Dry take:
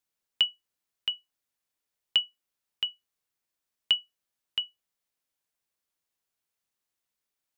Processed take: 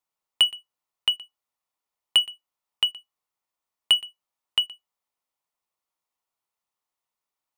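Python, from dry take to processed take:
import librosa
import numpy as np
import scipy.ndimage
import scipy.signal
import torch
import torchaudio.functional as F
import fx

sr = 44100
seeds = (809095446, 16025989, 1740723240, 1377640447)

p1 = fx.peak_eq(x, sr, hz=960.0, db=11.0, octaves=1.3)
p2 = fx.notch(p1, sr, hz=1600.0, q=7.0)
p3 = fx.leveller(p2, sr, passes=2)
y = p3 + fx.echo_single(p3, sr, ms=120, db=-21.0, dry=0)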